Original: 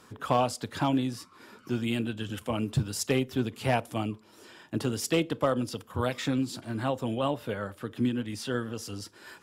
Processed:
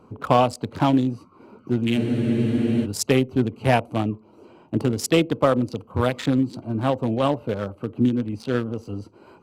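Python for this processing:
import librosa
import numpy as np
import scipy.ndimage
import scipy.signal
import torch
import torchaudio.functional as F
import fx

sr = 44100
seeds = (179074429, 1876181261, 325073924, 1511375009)

y = fx.wiener(x, sr, points=25)
y = fx.spec_freeze(y, sr, seeds[0], at_s=2.0, hold_s=0.84)
y = F.gain(torch.from_numpy(y), 8.0).numpy()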